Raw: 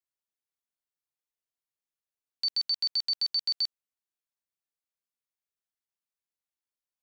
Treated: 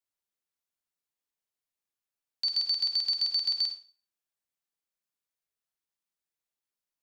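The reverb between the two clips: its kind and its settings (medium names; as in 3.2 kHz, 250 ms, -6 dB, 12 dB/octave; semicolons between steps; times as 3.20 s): Schroeder reverb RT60 0.38 s, DRR 5.5 dB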